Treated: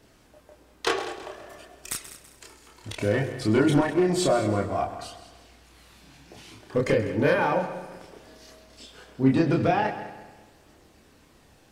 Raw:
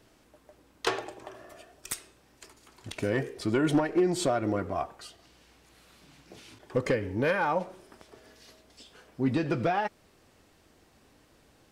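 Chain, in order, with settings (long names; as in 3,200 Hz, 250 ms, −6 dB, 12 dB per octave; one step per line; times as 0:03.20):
multi-voice chorus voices 2, 0.28 Hz, delay 29 ms, depth 1.3 ms
echo machine with several playback heads 66 ms, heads second and third, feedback 42%, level −14.5 dB
level +7 dB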